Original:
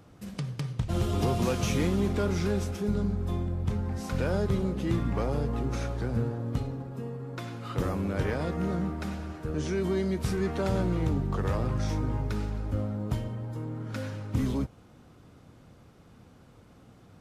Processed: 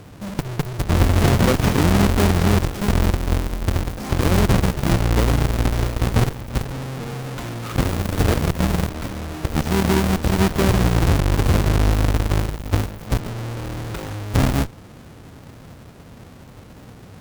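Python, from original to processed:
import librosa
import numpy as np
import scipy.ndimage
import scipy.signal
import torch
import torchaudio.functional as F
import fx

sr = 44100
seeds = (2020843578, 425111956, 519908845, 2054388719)

y = fx.halfwave_hold(x, sr)
y = fx.cheby_harmonics(y, sr, harmonics=(2, 4, 7), levels_db=(-7, -8, -9), full_scale_db=-16.0)
y = y * 10.0 ** (4.5 / 20.0)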